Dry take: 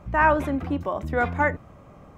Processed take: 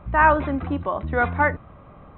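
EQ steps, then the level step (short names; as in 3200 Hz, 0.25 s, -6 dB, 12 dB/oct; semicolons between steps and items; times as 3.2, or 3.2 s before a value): brick-wall FIR low-pass 4100 Hz; low shelf 69 Hz +6.5 dB; bell 1200 Hz +4.5 dB 1.1 oct; 0.0 dB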